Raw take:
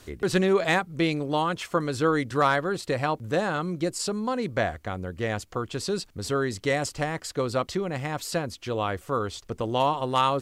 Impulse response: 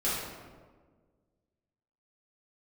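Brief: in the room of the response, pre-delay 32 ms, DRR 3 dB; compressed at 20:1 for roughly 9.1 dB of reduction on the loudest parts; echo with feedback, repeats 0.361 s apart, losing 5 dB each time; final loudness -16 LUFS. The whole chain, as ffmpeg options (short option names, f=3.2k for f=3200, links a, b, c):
-filter_complex "[0:a]acompressor=threshold=-26dB:ratio=20,aecho=1:1:361|722|1083|1444|1805|2166|2527:0.562|0.315|0.176|0.0988|0.0553|0.031|0.0173,asplit=2[a][b];[1:a]atrim=start_sample=2205,adelay=32[c];[b][c]afir=irnorm=-1:irlink=0,volume=-12dB[d];[a][d]amix=inputs=2:normalize=0,volume=12.5dB"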